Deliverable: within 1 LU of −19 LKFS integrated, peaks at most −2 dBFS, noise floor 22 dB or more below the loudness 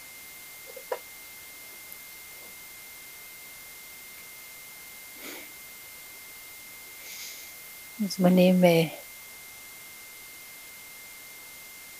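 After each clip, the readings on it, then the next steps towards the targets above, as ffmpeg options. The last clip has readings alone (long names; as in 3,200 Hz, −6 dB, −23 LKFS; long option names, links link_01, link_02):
interfering tone 2,100 Hz; level of the tone −48 dBFS; background noise floor −46 dBFS; target noise floor −50 dBFS; integrated loudness −27.5 LKFS; sample peak −6.5 dBFS; target loudness −19.0 LKFS
→ -af "bandreject=frequency=2100:width=30"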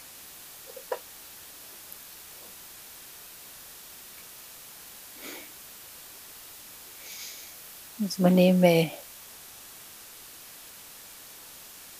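interfering tone none found; background noise floor −47 dBFS; target noise floor −48 dBFS
→ -af "afftdn=noise_reduction=6:noise_floor=-47"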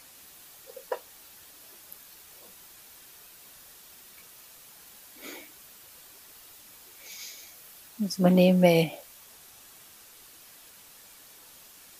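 background noise floor −52 dBFS; integrated loudness −25.0 LKFS; sample peak −6.5 dBFS; target loudness −19.0 LKFS
→ -af "volume=6dB,alimiter=limit=-2dB:level=0:latency=1"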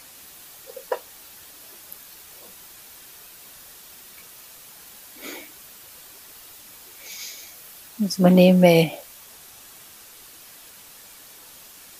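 integrated loudness −19.5 LKFS; sample peak −2.0 dBFS; background noise floor −46 dBFS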